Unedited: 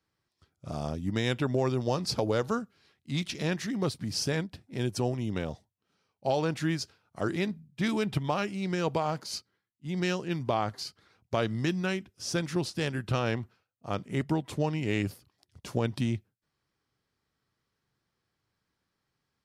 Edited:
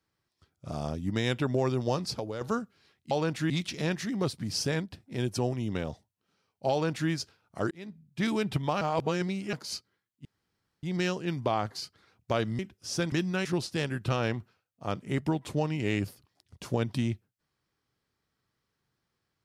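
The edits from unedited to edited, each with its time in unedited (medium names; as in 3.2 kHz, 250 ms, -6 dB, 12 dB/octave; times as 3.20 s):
1.98–2.41 s: fade out quadratic, to -9.5 dB
6.32–6.71 s: copy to 3.11 s
7.32–7.85 s: fade in
8.42–9.14 s: reverse
9.86 s: insert room tone 0.58 s
11.62–11.95 s: move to 12.48 s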